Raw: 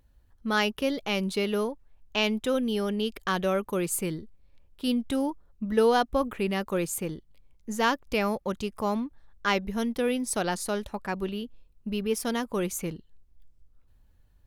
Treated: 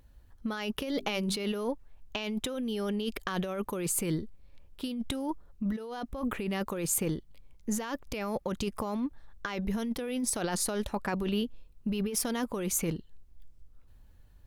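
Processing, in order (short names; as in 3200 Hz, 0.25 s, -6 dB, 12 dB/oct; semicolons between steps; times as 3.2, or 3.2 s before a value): 0.81–1.37 notches 50/100/150/200/250/300/350/400 Hz; negative-ratio compressor -32 dBFS, ratio -1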